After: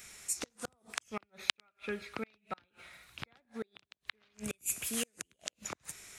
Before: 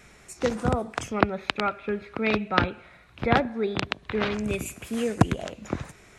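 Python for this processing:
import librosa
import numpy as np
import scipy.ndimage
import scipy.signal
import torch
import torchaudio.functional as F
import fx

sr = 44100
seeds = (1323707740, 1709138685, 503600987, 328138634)

y = fx.gate_flip(x, sr, shuts_db=-18.0, range_db=-38)
y = librosa.effects.preemphasis(y, coef=0.9, zi=[0.0])
y = y * 10.0 ** (9.0 / 20.0)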